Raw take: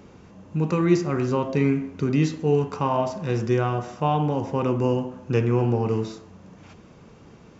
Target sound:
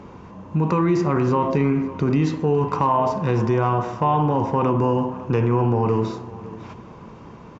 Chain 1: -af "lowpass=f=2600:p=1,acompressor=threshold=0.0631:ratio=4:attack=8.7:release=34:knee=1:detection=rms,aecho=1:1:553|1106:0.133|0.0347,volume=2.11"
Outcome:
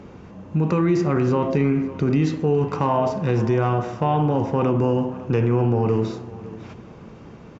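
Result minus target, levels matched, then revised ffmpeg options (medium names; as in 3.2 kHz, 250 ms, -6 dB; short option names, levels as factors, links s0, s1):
1 kHz band -3.5 dB
-af "lowpass=f=2600:p=1,equalizer=f=1000:t=o:w=0.35:g=10,acompressor=threshold=0.0631:ratio=4:attack=8.7:release=34:knee=1:detection=rms,aecho=1:1:553|1106:0.133|0.0347,volume=2.11"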